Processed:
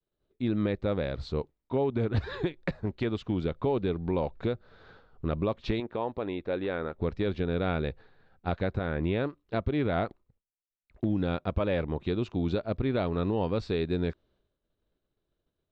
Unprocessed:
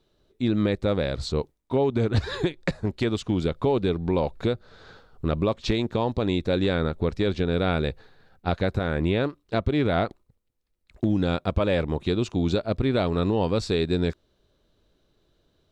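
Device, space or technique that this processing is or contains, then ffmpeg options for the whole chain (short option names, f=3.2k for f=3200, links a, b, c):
hearing-loss simulation: -filter_complex "[0:a]lowpass=3.2k,agate=range=-33dB:threshold=-58dB:ratio=3:detection=peak,asettb=1/sr,asplit=3[a][b][c];[a]atrim=end=5.804[d];[b]atrim=start=5.8:end=6.99,asetpts=PTS-STARTPTS,afade=t=in:d=0.004:c=qsin,afade=t=out:st=1.186:d=0.004:c=qsin,bass=f=250:g=-11,treble=f=4k:g=-14[e];[c]atrim=start=6.986[f];[d][e]acrossfade=d=0.004:c1=hsin:c2=qsin[g];[g][f]acrossfade=d=0.004:c1=qsin:c2=hsin,volume=-5dB"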